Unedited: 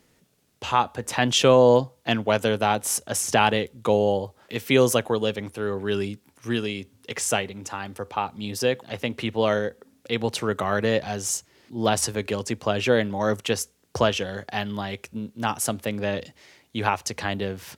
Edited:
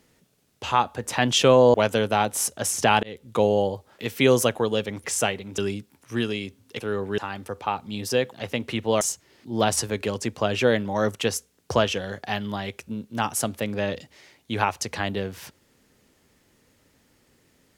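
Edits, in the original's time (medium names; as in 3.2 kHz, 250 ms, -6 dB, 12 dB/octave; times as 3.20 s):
1.74–2.24 s: delete
3.53–3.80 s: fade in
5.54–5.92 s: swap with 7.14–7.68 s
9.51–11.26 s: delete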